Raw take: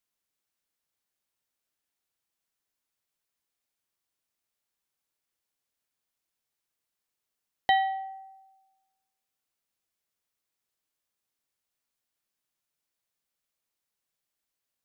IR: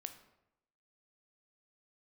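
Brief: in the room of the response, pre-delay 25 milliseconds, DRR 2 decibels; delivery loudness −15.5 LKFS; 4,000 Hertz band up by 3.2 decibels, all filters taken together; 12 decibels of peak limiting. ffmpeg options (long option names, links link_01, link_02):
-filter_complex "[0:a]equalizer=frequency=4000:width_type=o:gain=4.5,alimiter=limit=-23dB:level=0:latency=1,asplit=2[link_01][link_02];[1:a]atrim=start_sample=2205,adelay=25[link_03];[link_02][link_03]afir=irnorm=-1:irlink=0,volume=2dB[link_04];[link_01][link_04]amix=inputs=2:normalize=0,volume=16dB"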